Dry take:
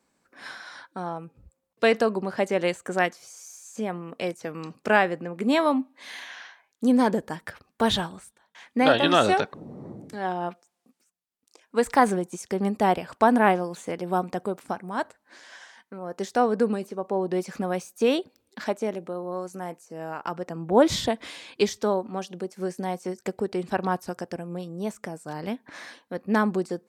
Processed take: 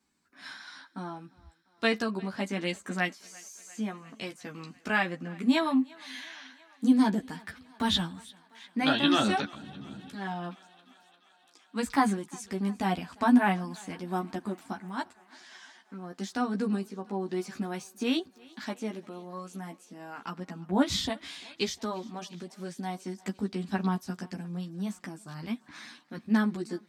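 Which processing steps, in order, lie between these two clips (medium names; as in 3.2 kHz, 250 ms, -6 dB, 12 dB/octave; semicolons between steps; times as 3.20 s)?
ten-band graphic EQ 250 Hz +6 dB, 500 Hz -12 dB, 4 kHz +4 dB; chorus voices 4, 0.13 Hz, delay 13 ms, depth 2.5 ms; thinning echo 348 ms, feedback 73%, high-pass 320 Hz, level -23.5 dB; trim -1.5 dB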